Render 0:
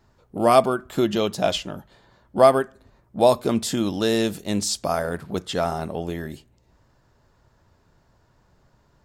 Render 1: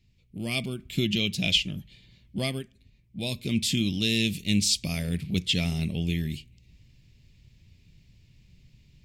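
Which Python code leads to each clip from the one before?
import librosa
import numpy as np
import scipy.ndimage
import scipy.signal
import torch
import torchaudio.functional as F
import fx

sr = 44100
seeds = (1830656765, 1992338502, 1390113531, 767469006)

y = fx.rider(x, sr, range_db=4, speed_s=0.5)
y = fx.curve_eq(y, sr, hz=(170.0, 830.0, 1500.0, 2300.0, 4500.0, 6600.0), db=(0, -28, -26, 5, -1, -5))
y = F.gain(torch.from_numpy(y), 2.0).numpy()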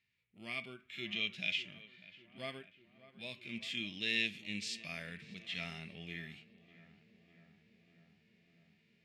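y = fx.bandpass_q(x, sr, hz=1700.0, q=2.1)
y = fx.echo_filtered(y, sr, ms=597, feedback_pct=77, hz=1700.0, wet_db=-17.0)
y = fx.hpss(y, sr, part='percussive', gain_db=-16)
y = F.gain(torch.from_numpy(y), 6.0).numpy()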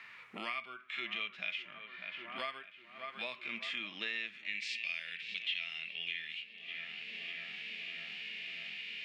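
y = fx.filter_sweep_bandpass(x, sr, from_hz=1200.0, to_hz=2900.0, start_s=4.23, end_s=4.89, q=3.0)
y = fx.band_squash(y, sr, depth_pct=100)
y = F.gain(torch.from_numpy(y), 12.5).numpy()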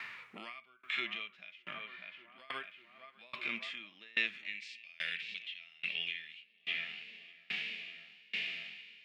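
y = fx.tremolo_decay(x, sr, direction='decaying', hz=1.2, depth_db=30)
y = F.gain(torch.from_numpy(y), 9.5).numpy()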